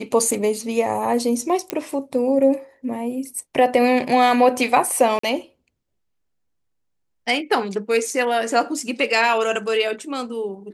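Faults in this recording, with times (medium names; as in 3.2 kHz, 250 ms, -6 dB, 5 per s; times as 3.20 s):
1.70 s: pop -7 dBFS
5.19–5.23 s: dropout 44 ms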